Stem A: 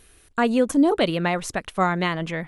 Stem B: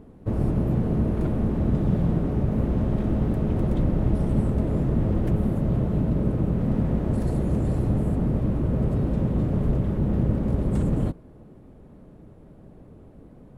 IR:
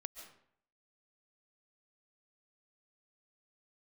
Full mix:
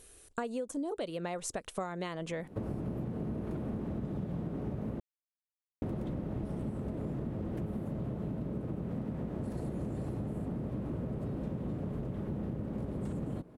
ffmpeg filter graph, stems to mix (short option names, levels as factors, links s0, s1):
-filter_complex "[0:a]equalizer=f=500:t=o:w=1:g=7,equalizer=f=2000:t=o:w=1:g=-3,equalizer=f=8000:t=o:w=1:g=9,volume=0.473[s0];[1:a]highpass=f=160:p=1,acrossover=split=390[s1][s2];[s2]acompressor=threshold=0.02:ratio=6[s3];[s1][s3]amix=inputs=2:normalize=0,adelay=2300,volume=1,asplit=3[s4][s5][s6];[s4]atrim=end=5,asetpts=PTS-STARTPTS,afade=t=out:st=4.996:d=0.004:c=hsin[s7];[s5]atrim=start=5:end=5.82,asetpts=PTS-STARTPTS,volume=0[s8];[s6]atrim=start=5.82,asetpts=PTS-STARTPTS,afade=t=in:d=0.004:c=hsin[s9];[s7][s8][s9]concat=n=3:v=0:a=1[s10];[s0][s10]amix=inputs=2:normalize=0,acompressor=threshold=0.0224:ratio=12"